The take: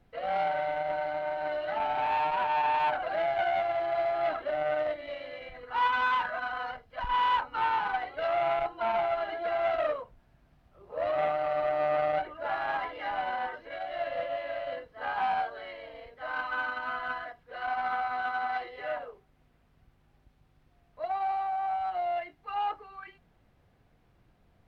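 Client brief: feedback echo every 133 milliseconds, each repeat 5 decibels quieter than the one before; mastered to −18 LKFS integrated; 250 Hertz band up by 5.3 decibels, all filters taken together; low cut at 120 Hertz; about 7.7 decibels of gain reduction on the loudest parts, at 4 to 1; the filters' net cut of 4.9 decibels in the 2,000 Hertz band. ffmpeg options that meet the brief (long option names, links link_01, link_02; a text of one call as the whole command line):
ffmpeg -i in.wav -af "highpass=120,equalizer=frequency=250:width_type=o:gain=7.5,equalizer=frequency=2000:width_type=o:gain=-7.5,acompressor=threshold=-34dB:ratio=4,aecho=1:1:133|266|399|532|665|798|931:0.562|0.315|0.176|0.0988|0.0553|0.031|0.0173,volume=18dB" out.wav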